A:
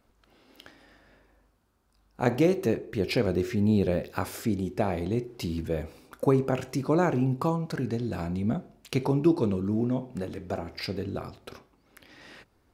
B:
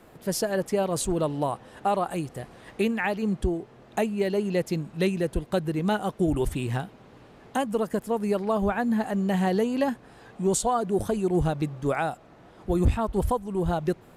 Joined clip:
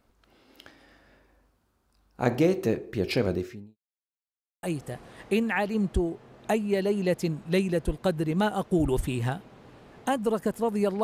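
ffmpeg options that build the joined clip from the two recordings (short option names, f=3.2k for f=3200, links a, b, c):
-filter_complex "[0:a]apad=whole_dur=11.03,atrim=end=11.03,asplit=2[a][b];[a]atrim=end=3.77,asetpts=PTS-STARTPTS,afade=t=out:st=3.31:d=0.46:c=qua[c];[b]atrim=start=3.77:end=4.63,asetpts=PTS-STARTPTS,volume=0[d];[1:a]atrim=start=2.11:end=8.51,asetpts=PTS-STARTPTS,afade=t=in:d=0.004:c=hsin[e];[c][d][e]concat=n=3:v=0:a=1"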